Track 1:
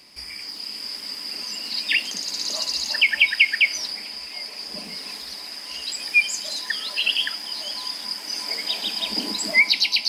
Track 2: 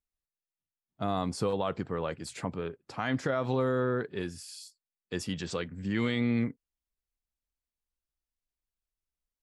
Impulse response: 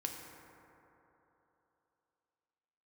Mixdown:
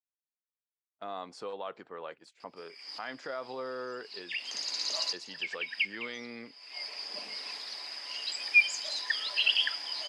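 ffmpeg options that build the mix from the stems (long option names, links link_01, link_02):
-filter_complex "[0:a]adelay=2400,volume=-4dB[link_01];[1:a]agate=range=-16dB:threshold=-39dB:ratio=16:detection=peak,volume=-6dB,asplit=2[link_02][link_03];[link_03]apad=whole_len=550574[link_04];[link_01][link_04]sidechaincompress=threshold=-58dB:ratio=3:attack=16:release=204[link_05];[link_05][link_02]amix=inputs=2:normalize=0,highpass=480,lowpass=5400"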